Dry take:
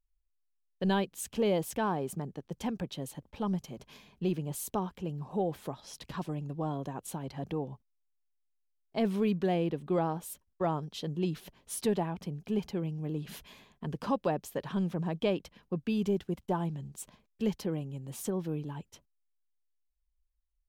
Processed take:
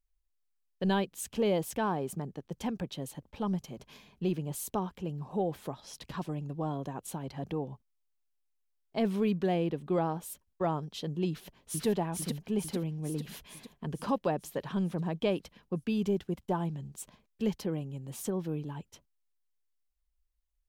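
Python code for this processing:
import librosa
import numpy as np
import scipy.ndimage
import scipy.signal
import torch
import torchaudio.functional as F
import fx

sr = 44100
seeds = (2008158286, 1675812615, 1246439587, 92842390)

y = fx.echo_throw(x, sr, start_s=11.29, length_s=0.57, ms=450, feedback_pct=60, wet_db=-0.5)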